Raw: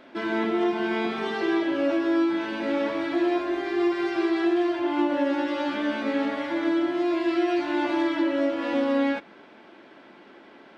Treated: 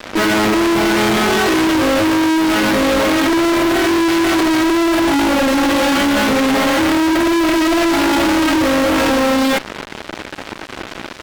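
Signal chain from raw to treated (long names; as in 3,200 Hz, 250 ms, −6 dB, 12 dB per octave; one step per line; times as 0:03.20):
fuzz pedal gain 46 dB, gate −46 dBFS
wrong playback speed 25 fps video run at 24 fps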